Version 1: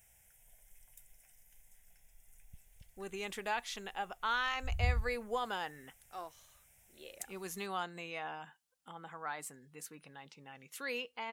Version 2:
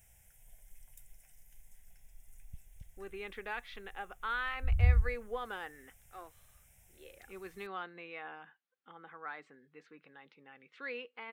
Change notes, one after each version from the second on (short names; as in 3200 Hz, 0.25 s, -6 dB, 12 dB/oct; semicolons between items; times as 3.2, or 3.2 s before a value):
speech: add speaker cabinet 360–3200 Hz, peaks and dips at 650 Hz -8 dB, 930 Hz -8 dB, 2900 Hz -6 dB; master: add low shelf 210 Hz +8 dB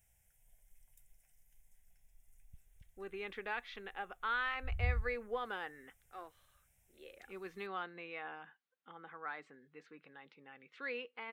background -9.5 dB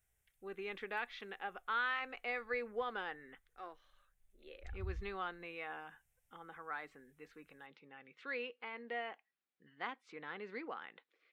speech: entry -2.55 s; background -8.5 dB